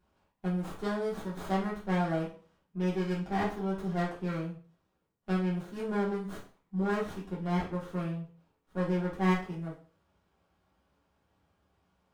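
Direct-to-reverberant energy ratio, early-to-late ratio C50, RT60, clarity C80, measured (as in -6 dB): -7.5 dB, 7.0 dB, 0.40 s, 12.5 dB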